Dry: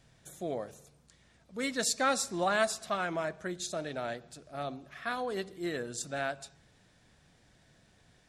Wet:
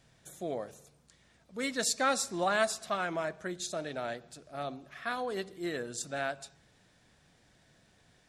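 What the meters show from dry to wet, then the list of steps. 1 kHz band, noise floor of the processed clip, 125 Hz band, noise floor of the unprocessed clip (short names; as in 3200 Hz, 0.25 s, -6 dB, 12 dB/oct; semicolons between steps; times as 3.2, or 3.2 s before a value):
0.0 dB, -66 dBFS, -2.0 dB, -65 dBFS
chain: low shelf 140 Hz -4 dB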